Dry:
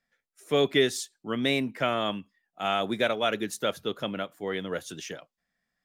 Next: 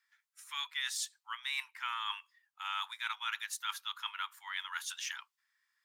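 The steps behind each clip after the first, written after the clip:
Butterworth high-pass 890 Hz 96 dB per octave
reversed playback
downward compressor 5 to 1, threshold −38 dBFS, peak gain reduction 14 dB
reversed playback
level +3 dB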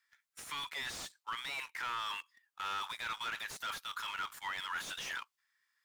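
leveller curve on the samples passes 2
brickwall limiter −34 dBFS, peak gain reduction 12 dB
slew-rate limiting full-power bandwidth 23 Hz
level +4 dB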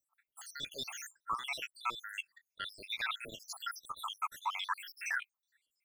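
time-frequency cells dropped at random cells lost 79%
level +7 dB

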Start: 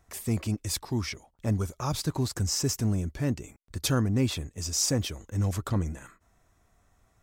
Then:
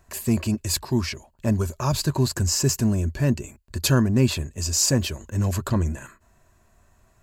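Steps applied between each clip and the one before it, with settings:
EQ curve with evenly spaced ripples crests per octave 1.4, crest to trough 7 dB
level +5.5 dB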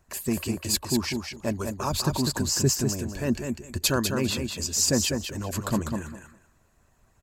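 harmonic and percussive parts rebalanced harmonic −13 dB
on a send: repeating echo 199 ms, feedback 17%, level −5.5 dB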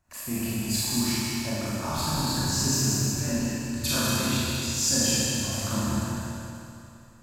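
parametric band 420 Hz −11 dB 0.5 octaves
four-comb reverb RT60 2.7 s, combs from 26 ms, DRR −9.5 dB
level −8.5 dB

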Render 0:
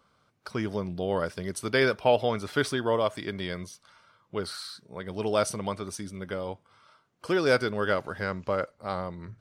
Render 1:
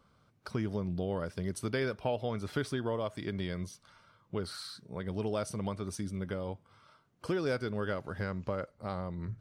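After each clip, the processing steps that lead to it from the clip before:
downward compressor 2 to 1, threshold −35 dBFS, peak gain reduction 10 dB
low-shelf EQ 280 Hz +10 dB
level −3.5 dB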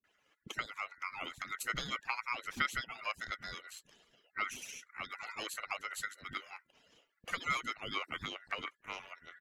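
harmonic-percussive split with one part muted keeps percussive
ring modulation 1,700 Hz
multiband delay without the direct sound lows, highs 40 ms, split 300 Hz
level +3.5 dB

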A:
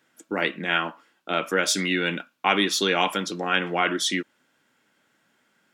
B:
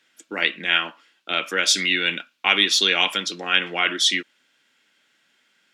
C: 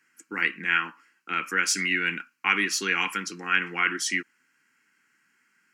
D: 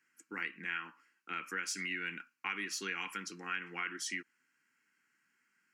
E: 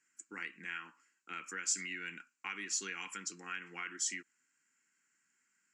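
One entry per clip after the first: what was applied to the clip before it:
meter weighting curve D; level −3.5 dB
phaser with its sweep stopped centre 1,500 Hz, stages 4
downward compressor 2.5 to 1, threshold −27 dBFS, peak gain reduction 7.5 dB; level −9 dB
low-pass with resonance 7,400 Hz, resonance Q 6.6; level −4.5 dB

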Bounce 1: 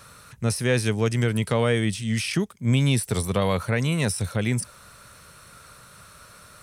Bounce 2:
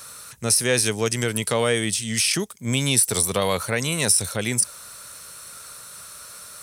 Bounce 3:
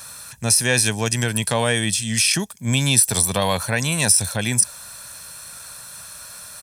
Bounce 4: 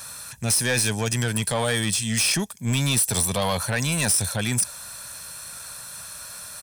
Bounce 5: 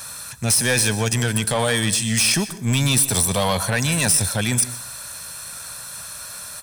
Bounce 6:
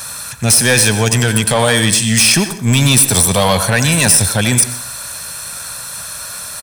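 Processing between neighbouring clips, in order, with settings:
bass and treble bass −8 dB, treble +11 dB; level +2 dB
comb filter 1.2 ms, depth 50%; level +2 dB
soft clipping −16.5 dBFS, distortion −10 dB
dense smooth reverb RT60 0.51 s, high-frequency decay 0.8×, pre-delay 110 ms, DRR 14.5 dB; level +3.5 dB
far-end echo of a speakerphone 90 ms, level −9 dB; level +7.5 dB

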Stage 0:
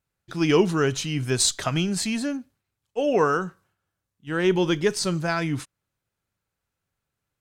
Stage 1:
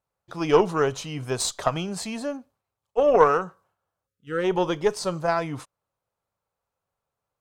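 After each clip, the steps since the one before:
time-frequency box erased 0:04.07–0:04.44, 580–1,200 Hz
flat-topped bell 740 Hz +11 dB
harmonic generator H 3 −23 dB, 4 −23 dB, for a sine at 1.5 dBFS
level −4 dB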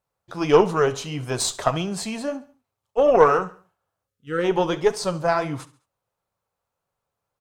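flanger 1.6 Hz, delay 5 ms, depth 5.9 ms, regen −62%
repeating echo 69 ms, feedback 42%, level −18 dB
level +6.5 dB

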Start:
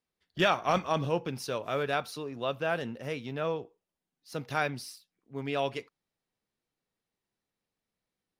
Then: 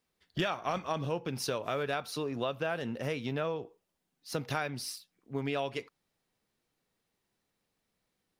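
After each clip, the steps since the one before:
downward compressor 5 to 1, threshold −37 dBFS, peak gain reduction 14.5 dB
level +6.5 dB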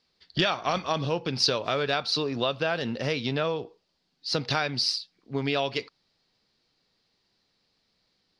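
low-pass with resonance 4,600 Hz, resonance Q 4.8
level +5.5 dB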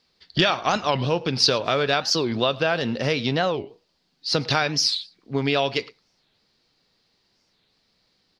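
single-tap delay 108 ms −23 dB
wow of a warped record 45 rpm, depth 250 cents
level +5 dB

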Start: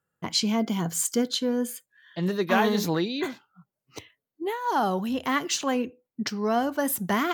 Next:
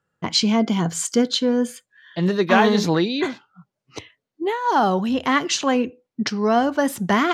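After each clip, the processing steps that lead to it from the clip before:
low-pass filter 6,400 Hz 12 dB per octave
level +6.5 dB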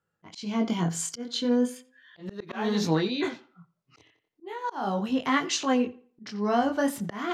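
chorus effect 0.37 Hz, delay 18.5 ms, depth 6.7 ms
tape delay 87 ms, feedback 31%, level −19 dB, low-pass 3,800 Hz
volume swells 294 ms
level −3 dB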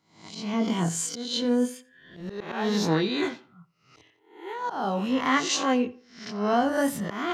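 peak hold with a rise ahead of every peak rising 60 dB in 0.50 s

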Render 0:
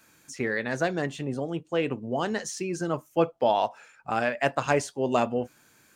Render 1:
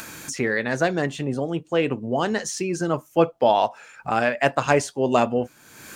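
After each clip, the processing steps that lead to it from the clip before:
upward compression, threshold −30 dBFS
level +5 dB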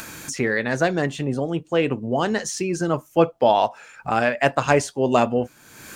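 low-shelf EQ 82 Hz +5 dB
level +1 dB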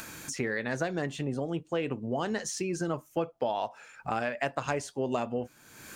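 downward compressor, threshold −20 dBFS, peak gain reduction 9.5 dB
level −6.5 dB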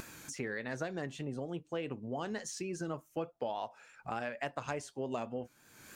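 pitch vibrato 3.4 Hz 48 cents
level −7 dB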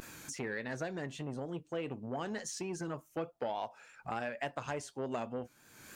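saturating transformer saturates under 840 Hz
level +1 dB

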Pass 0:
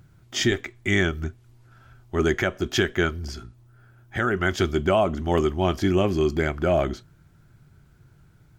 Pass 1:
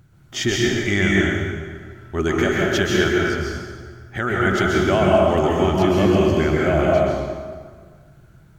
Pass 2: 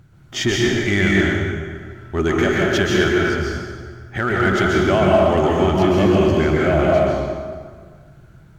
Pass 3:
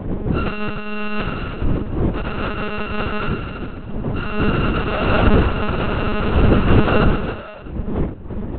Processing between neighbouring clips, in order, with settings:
notch filter 5,000 Hz, Q 22; dense smooth reverb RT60 1.7 s, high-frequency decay 0.75×, pre-delay 115 ms, DRR −4 dB
high-shelf EQ 7,500 Hz −6.5 dB; in parallel at −7 dB: hard clipping −22 dBFS, distortion −6 dB
samples sorted by size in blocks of 32 samples; wind on the microphone 230 Hz −15 dBFS; one-pitch LPC vocoder at 8 kHz 210 Hz; level −5 dB

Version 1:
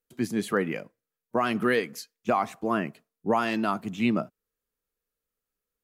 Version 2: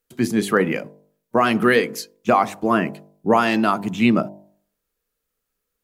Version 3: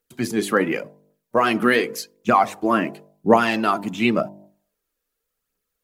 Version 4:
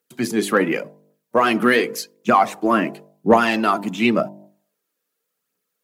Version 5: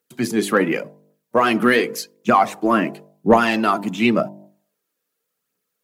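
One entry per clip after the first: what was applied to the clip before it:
hum removal 50.04 Hz, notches 20; level +8.5 dB
low-shelf EQ 120 Hz −6 dB; phase shifter 0.9 Hz, delay 3.8 ms, feedback 43%; level −1 dB
high-pass filter 130 Hz 24 dB per octave; in parallel at −4 dB: soft clipping −10 dBFS, distortion −15 dB; on the sum: level −2 dB
low-shelf EQ 87 Hz +7.5 dB

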